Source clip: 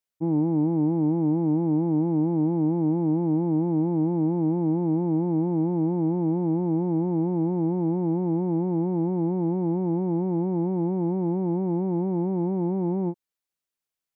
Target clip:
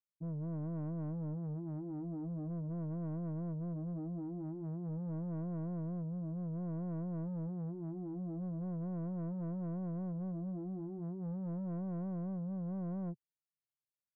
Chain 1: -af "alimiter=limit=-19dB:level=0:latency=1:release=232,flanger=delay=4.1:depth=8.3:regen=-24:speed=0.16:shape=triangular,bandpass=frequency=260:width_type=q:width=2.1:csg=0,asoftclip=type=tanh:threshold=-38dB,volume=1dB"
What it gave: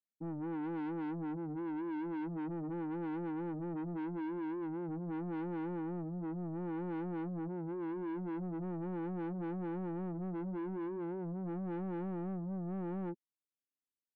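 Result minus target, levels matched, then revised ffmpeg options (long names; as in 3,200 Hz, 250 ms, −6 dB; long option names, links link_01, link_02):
125 Hz band −5.5 dB
-af "alimiter=limit=-19dB:level=0:latency=1:release=232,flanger=delay=4.1:depth=8.3:regen=-24:speed=0.16:shape=triangular,bandpass=frequency=130:width_type=q:width=2.1:csg=0,asoftclip=type=tanh:threshold=-38dB,volume=1dB"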